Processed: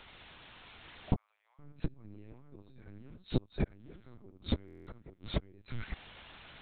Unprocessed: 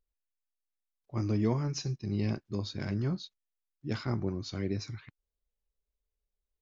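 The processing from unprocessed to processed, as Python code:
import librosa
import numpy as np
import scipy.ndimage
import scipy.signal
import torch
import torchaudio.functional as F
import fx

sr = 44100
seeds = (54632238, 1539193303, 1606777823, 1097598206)

p1 = fx.crossing_spikes(x, sr, level_db=-30.5, at=(2.93, 4.14))
p2 = fx.transient(p1, sr, attack_db=7, sustain_db=0)
p3 = fx.quant_dither(p2, sr, seeds[0], bits=8, dither='triangular')
p4 = p2 + (p3 * librosa.db_to_amplitude(-12.0))
p5 = fx.level_steps(p4, sr, step_db=16)
p6 = p5 + fx.echo_multitap(p5, sr, ms=(75, 813, 839), db=(-7.0, -19.5, -3.5), dry=0)
p7 = 10.0 ** (-20.5 / 20.0) * np.tanh(p6 / 10.0 ** (-20.5 / 20.0))
p8 = fx.gate_flip(p7, sr, shuts_db=-29.0, range_db=-35)
p9 = fx.lpc_vocoder(p8, sr, seeds[1], excitation='pitch_kept', order=10)
p10 = fx.bessel_highpass(p9, sr, hz=1300.0, order=8, at=(1.16, 1.59))
p11 = fx.buffer_glitch(p10, sr, at_s=(4.66,), block=1024, repeats=8)
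y = p11 * librosa.db_to_amplitude(16.0)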